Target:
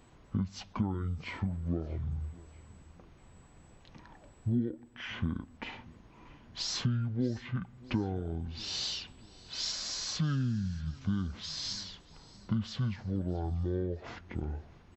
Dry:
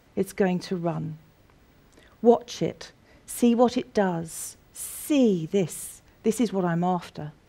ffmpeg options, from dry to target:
ffmpeg -i in.wav -af "acompressor=threshold=-30dB:ratio=5,asetrate=22050,aresample=44100,aecho=1:1:637|1274|1911:0.0794|0.0381|0.0183" out.wav

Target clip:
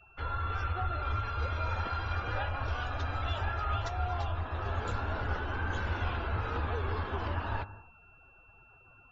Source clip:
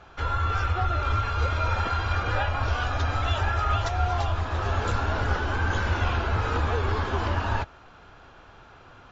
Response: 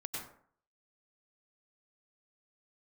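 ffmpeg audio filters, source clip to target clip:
-filter_complex "[0:a]asplit=2[link_01][link_02];[1:a]atrim=start_sample=2205,lowpass=6000,adelay=58[link_03];[link_02][link_03]afir=irnorm=-1:irlink=0,volume=-15dB[link_04];[link_01][link_04]amix=inputs=2:normalize=0,afftdn=noise_reduction=21:noise_floor=-45,aeval=exprs='val(0)+0.00282*sin(2*PI*2700*n/s)':channel_layout=same,volume=-8dB"

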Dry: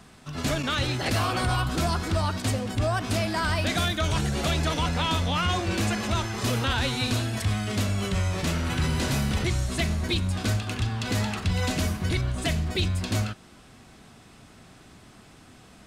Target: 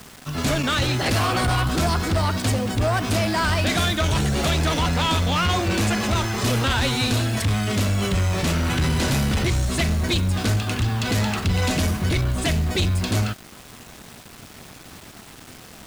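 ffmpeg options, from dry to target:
ffmpeg -i in.wav -af "acrusher=bits=7:mix=0:aa=0.000001,aeval=exprs='0.15*sin(PI/2*1.41*val(0)/0.15)':channel_layout=same" out.wav

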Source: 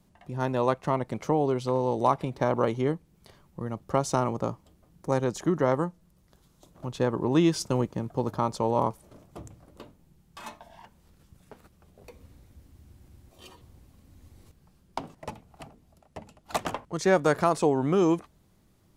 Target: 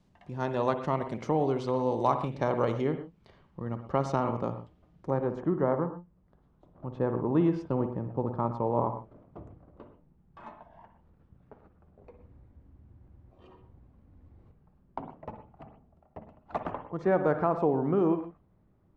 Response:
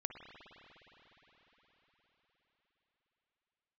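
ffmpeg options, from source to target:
-filter_complex "[0:a]asetnsamples=nb_out_samples=441:pad=0,asendcmd='2.87 lowpass f 3200;5.1 lowpass f 1300',lowpass=5700[link_01];[1:a]atrim=start_sample=2205,afade=type=out:start_time=0.2:duration=0.01,atrim=end_sample=9261[link_02];[link_01][link_02]afir=irnorm=-1:irlink=0"

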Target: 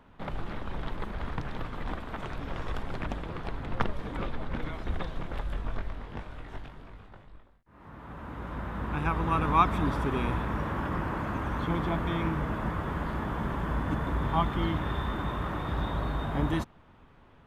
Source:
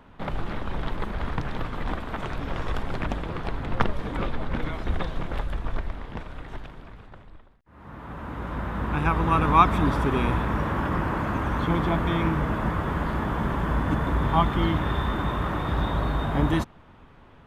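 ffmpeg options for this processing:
ffmpeg -i in.wav -filter_complex "[0:a]asettb=1/sr,asplit=3[link_01][link_02][link_03];[link_01]atrim=end=5.434[link_04];[link_02]atrim=start=5.43:end=7.89,asetpts=PTS-STARTPTS,afade=type=in:duration=0.004:curve=qsin,afade=type=out:start_time=2.456:duration=0.004:curve=qsin,asplit=2[link_05][link_06];[link_06]adelay=21,volume=-4dB[link_07];[link_05][link_07]amix=inputs=2:normalize=0,atrim=end_sample=108486[link_08];[link_03]atrim=start=7.886[link_09];[link_04][link_08]acrossfade=duration=0.004:curve1=hsin:curve2=qsin[link_10];[link_10][link_09]acrossfade=duration=0.004:curve1=qsin:curve2=hsin,volume=-5.5dB" out.wav

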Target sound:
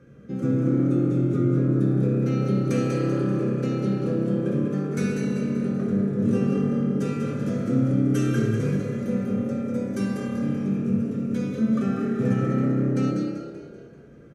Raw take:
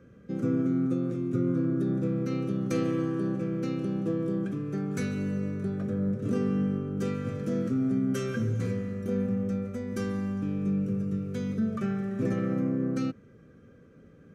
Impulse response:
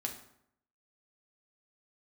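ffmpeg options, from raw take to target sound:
-filter_complex "[0:a]asplit=7[link_01][link_02][link_03][link_04][link_05][link_06][link_07];[link_02]adelay=193,afreqshift=35,volume=-6.5dB[link_08];[link_03]adelay=386,afreqshift=70,volume=-12.9dB[link_09];[link_04]adelay=579,afreqshift=105,volume=-19.3dB[link_10];[link_05]adelay=772,afreqshift=140,volume=-25.6dB[link_11];[link_06]adelay=965,afreqshift=175,volume=-32dB[link_12];[link_07]adelay=1158,afreqshift=210,volume=-38.4dB[link_13];[link_01][link_08][link_09][link_10][link_11][link_12][link_13]amix=inputs=7:normalize=0[link_14];[1:a]atrim=start_sample=2205,asetrate=24696,aresample=44100[link_15];[link_14][link_15]afir=irnorm=-1:irlink=0"

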